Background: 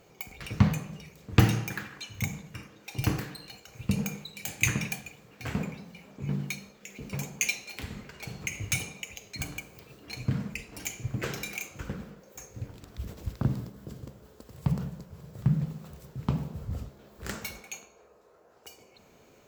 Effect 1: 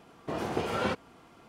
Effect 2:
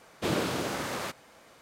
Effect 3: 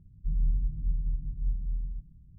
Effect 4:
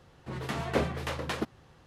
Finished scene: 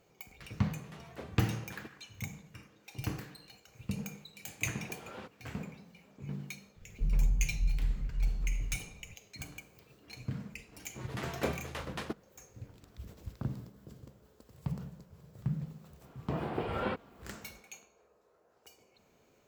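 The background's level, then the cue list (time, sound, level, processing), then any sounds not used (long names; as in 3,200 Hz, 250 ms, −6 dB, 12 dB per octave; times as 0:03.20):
background −9 dB
0:00.43: mix in 4 −18 dB
0:04.33: mix in 1 −17 dB + highs frequency-modulated by the lows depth 0.25 ms
0:06.76: mix in 3 −1 dB
0:10.68: mix in 4 −5 dB + mu-law and A-law mismatch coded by A
0:16.01: mix in 1 −4 dB + moving average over 7 samples
not used: 2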